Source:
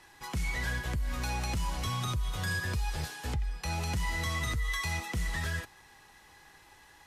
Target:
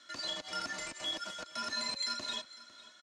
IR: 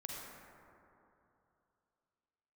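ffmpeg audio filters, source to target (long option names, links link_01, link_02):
-filter_complex "[0:a]highpass=260,equalizer=frequency=1300:width_type=o:width=2.4:gain=-8.5,aecho=1:1:6:0.67,acrossover=split=360[link_01][link_02];[link_01]acrusher=bits=5:dc=4:mix=0:aa=0.000001[link_03];[link_03][link_02]amix=inputs=2:normalize=0,highpass=frequency=340:width_type=q:width=0.5412,highpass=frequency=340:width_type=q:width=1.307,lowpass=frequency=3100:width_type=q:width=0.5176,lowpass=frequency=3100:width_type=q:width=0.7071,lowpass=frequency=3100:width_type=q:width=1.932,afreqshift=-230,asplit=2[link_04][link_05];[link_05]aecho=0:1:1175:0.126[link_06];[link_04][link_06]amix=inputs=2:normalize=0,asetrate=103194,aresample=44100,volume=4dB"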